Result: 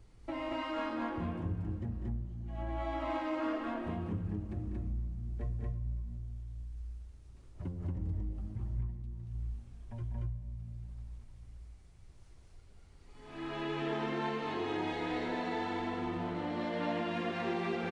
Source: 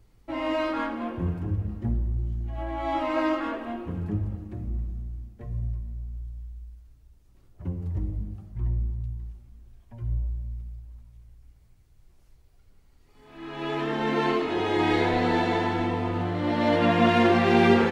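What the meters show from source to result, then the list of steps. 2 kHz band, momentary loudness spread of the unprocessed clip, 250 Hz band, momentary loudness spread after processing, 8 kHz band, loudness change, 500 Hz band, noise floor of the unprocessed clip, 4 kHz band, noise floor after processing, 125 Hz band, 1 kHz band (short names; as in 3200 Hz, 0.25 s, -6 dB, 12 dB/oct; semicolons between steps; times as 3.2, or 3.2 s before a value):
-11.5 dB, 18 LU, -11.0 dB, 12 LU, n/a, -11.0 dB, -12.0 dB, -58 dBFS, -11.0 dB, -56 dBFS, -8.0 dB, -11.0 dB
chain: compressor 5:1, threshold -37 dBFS, peak gain reduction 20 dB; loudspeakers at several distances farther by 67 m -9 dB, 79 m -1 dB; downsampling 22050 Hz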